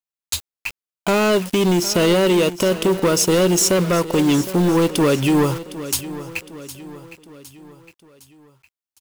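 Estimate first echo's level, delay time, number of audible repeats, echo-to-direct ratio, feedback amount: -15.0 dB, 760 ms, 4, -14.0 dB, 48%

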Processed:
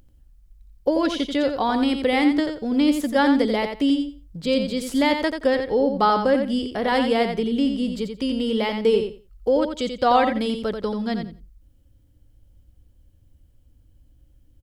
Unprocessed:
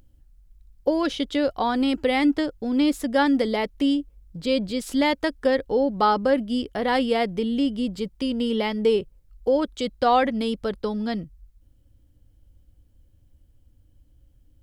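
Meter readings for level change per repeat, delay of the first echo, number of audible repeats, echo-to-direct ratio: -15.0 dB, 87 ms, 2, -7.0 dB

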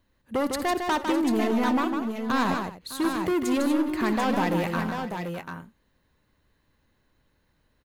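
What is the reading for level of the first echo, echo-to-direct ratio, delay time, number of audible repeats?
-17.0 dB, -2.5 dB, 59 ms, 5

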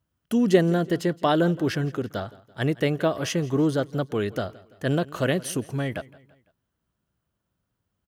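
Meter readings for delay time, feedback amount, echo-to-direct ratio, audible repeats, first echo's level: 168 ms, 47%, -20.0 dB, 3, -21.0 dB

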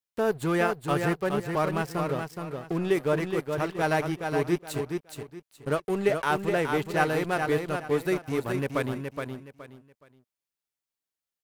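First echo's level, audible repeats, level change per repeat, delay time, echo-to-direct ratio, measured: -5.5 dB, 3, -11.5 dB, 420 ms, -5.0 dB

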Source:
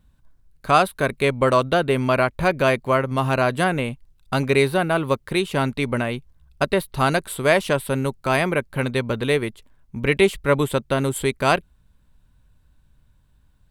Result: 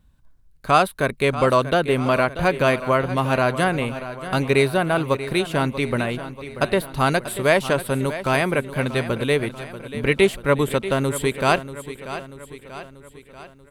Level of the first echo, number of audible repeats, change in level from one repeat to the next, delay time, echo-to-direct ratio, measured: -13.0 dB, 5, -5.5 dB, 637 ms, -11.5 dB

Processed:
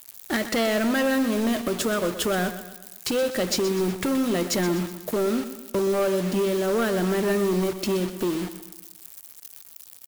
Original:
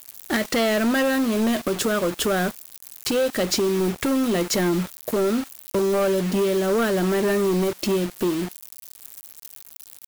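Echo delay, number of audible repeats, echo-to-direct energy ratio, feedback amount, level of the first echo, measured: 124 ms, 4, -11.0 dB, 47%, -12.0 dB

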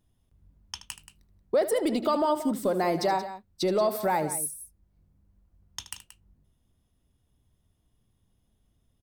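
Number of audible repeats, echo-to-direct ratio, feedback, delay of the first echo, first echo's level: 2, -10.0 dB, no regular repeats, 76 ms, -13.5 dB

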